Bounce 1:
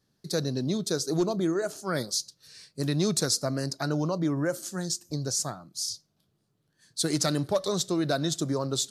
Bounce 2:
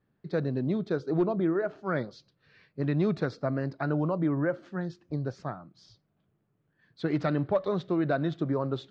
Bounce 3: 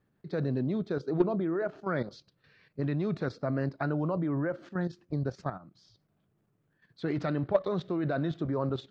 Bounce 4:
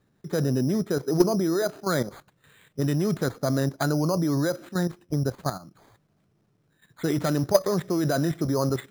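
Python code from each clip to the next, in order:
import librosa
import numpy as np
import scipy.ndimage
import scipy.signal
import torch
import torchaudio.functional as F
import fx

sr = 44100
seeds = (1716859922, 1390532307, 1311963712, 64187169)

y1 = scipy.signal.sosfilt(scipy.signal.butter(4, 2500.0, 'lowpass', fs=sr, output='sos'), x)
y2 = fx.level_steps(y1, sr, step_db=11)
y2 = F.gain(torch.from_numpy(y2), 3.5).numpy()
y3 = np.repeat(y2[::8], 8)[:len(y2)]
y3 = F.gain(torch.from_numpy(y3), 6.0).numpy()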